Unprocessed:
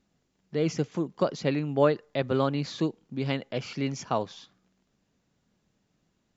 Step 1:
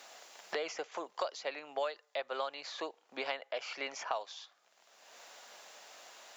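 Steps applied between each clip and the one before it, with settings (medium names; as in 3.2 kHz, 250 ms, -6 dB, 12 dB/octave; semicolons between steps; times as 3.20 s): Chebyshev high-pass 640 Hz, order 3; three bands compressed up and down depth 100%; trim -4 dB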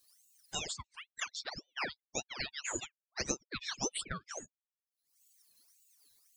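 expander on every frequency bin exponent 3; resonant high shelf 2.3 kHz +9 dB, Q 3; ring modulator with a swept carrier 1.9 kHz, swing 75%, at 1.8 Hz; trim +4 dB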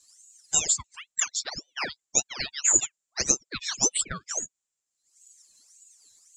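resonant low-pass 7.3 kHz, resonance Q 8; trim +5 dB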